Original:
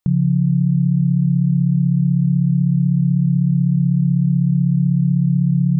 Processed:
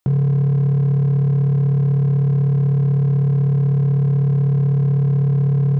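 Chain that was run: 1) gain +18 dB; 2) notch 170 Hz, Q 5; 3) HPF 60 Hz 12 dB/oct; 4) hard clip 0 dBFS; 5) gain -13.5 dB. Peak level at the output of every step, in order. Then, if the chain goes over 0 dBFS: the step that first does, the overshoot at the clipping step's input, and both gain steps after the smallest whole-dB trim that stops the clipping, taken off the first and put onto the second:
+8.5, +7.0, +5.5, 0.0, -13.5 dBFS; step 1, 5.5 dB; step 1 +12 dB, step 5 -7.5 dB

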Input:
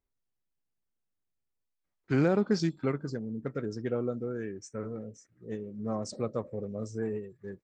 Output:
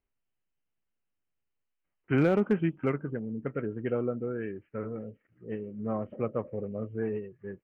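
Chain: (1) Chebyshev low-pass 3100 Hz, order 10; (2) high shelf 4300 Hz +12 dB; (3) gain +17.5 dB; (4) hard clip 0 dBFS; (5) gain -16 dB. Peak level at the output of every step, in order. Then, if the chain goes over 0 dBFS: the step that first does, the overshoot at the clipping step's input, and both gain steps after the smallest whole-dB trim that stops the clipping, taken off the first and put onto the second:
-15.0, -14.5, +3.0, 0.0, -16.0 dBFS; step 3, 3.0 dB; step 3 +14.5 dB, step 5 -13 dB

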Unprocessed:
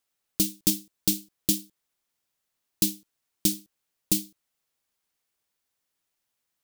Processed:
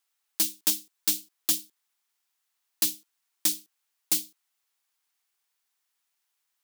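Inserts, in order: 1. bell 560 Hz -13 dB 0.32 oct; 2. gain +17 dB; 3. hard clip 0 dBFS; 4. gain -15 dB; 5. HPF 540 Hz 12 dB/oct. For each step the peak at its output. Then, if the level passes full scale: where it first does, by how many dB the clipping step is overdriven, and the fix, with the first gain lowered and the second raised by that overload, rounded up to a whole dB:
-7.0, +10.0, 0.0, -15.0, -10.0 dBFS; step 2, 10.0 dB; step 2 +7 dB, step 4 -5 dB

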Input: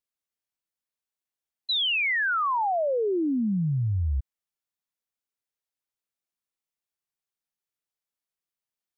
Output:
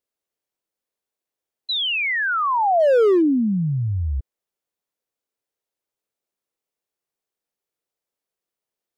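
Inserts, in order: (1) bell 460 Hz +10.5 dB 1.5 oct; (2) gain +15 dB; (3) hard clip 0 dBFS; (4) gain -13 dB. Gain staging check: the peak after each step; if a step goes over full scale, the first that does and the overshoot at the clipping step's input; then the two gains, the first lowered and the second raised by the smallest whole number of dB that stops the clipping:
-11.5, +3.5, 0.0, -13.0 dBFS; step 2, 3.5 dB; step 2 +11 dB, step 4 -9 dB

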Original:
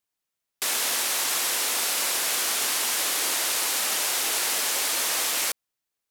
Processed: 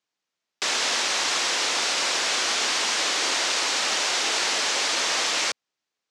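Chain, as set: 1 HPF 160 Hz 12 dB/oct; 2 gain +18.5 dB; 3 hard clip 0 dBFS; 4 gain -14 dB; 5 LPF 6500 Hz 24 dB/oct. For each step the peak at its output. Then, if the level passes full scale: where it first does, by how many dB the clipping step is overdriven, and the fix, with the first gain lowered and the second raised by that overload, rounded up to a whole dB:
-12.5, +6.0, 0.0, -14.0, -12.5 dBFS; step 2, 6.0 dB; step 2 +12.5 dB, step 4 -8 dB

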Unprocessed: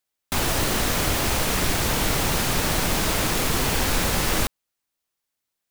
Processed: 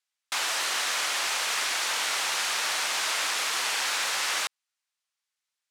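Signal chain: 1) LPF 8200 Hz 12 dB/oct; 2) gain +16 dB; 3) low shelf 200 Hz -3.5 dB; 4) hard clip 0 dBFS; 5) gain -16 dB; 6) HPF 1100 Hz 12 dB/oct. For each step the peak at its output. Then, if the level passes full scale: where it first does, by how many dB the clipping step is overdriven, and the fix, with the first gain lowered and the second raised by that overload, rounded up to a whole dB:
-10.0, +6.0, +4.5, 0.0, -16.0, -14.5 dBFS; step 2, 4.5 dB; step 2 +11 dB, step 5 -11 dB

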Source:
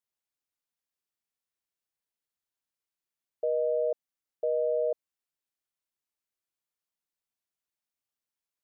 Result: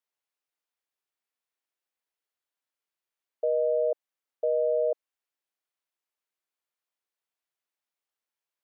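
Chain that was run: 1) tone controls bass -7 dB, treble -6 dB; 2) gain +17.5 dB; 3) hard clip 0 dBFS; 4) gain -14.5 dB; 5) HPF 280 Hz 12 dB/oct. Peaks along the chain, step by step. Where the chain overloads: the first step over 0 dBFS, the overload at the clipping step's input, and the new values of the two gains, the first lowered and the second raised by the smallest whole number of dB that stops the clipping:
-21.5, -4.0, -4.0, -18.5, -19.0 dBFS; no overload

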